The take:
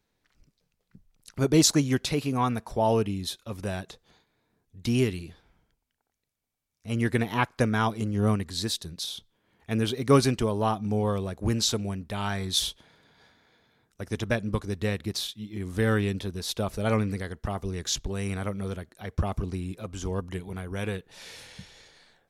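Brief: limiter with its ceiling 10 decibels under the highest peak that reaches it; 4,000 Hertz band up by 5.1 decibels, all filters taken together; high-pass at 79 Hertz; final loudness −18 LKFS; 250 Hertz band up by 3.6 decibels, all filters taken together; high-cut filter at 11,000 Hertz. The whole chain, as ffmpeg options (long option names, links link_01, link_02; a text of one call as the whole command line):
ffmpeg -i in.wav -af "highpass=79,lowpass=11000,equalizer=frequency=250:width_type=o:gain=4.5,equalizer=frequency=4000:width_type=o:gain=6,volume=10dB,alimiter=limit=-4dB:level=0:latency=1" out.wav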